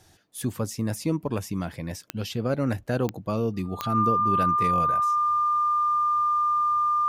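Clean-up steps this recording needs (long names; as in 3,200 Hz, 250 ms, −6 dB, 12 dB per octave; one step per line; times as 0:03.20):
click removal
notch filter 1,200 Hz, Q 30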